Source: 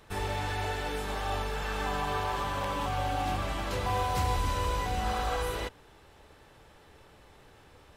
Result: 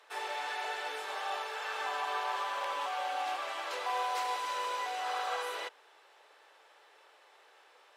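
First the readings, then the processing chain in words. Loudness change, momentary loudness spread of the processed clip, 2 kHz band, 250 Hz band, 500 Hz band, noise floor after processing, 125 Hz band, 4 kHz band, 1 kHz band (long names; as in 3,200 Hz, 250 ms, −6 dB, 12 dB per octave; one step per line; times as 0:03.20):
−3.5 dB, 4 LU, −1.0 dB, −20.5 dB, −6.0 dB, −62 dBFS, below −40 dB, −1.5 dB, −2.0 dB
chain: Bessel high-pass filter 700 Hz, order 8
high-shelf EQ 8,500 Hz −11 dB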